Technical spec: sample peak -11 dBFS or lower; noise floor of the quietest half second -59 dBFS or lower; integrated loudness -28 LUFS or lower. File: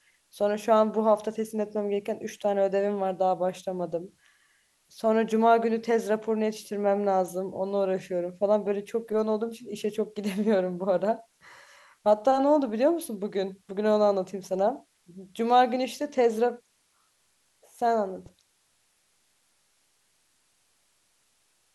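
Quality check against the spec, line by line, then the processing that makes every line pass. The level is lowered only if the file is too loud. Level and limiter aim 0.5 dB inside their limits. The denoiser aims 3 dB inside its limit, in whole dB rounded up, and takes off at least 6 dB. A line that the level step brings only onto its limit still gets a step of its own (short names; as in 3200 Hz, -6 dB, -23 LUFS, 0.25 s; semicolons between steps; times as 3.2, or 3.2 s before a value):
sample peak -8.5 dBFS: fail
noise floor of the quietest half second -69 dBFS: OK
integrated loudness -26.5 LUFS: fail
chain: gain -2 dB; limiter -11.5 dBFS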